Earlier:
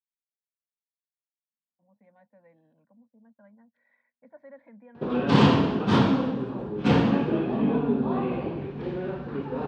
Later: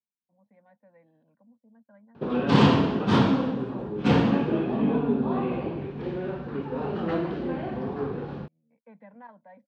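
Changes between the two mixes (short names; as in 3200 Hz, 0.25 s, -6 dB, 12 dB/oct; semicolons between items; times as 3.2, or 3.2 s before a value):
speech: entry -1.50 s; background: entry -2.80 s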